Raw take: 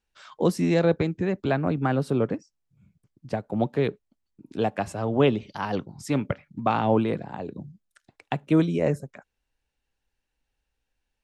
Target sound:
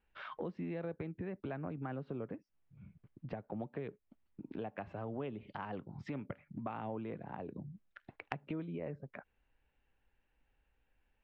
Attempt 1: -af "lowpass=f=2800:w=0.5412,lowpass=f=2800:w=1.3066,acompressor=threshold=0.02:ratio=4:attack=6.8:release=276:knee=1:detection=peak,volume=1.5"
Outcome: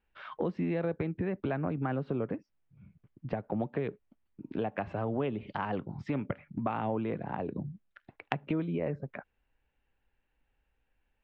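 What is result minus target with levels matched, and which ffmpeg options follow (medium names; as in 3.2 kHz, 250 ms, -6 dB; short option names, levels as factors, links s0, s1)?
compression: peak gain reduction -9 dB
-af "lowpass=f=2800:w=0.5412,lowpass=f=2800:w=1.3066,acompressor=threshold=0.00501:ratio=4:attack=6.8:release=276:knee=1:detection=peak,volume=1.5"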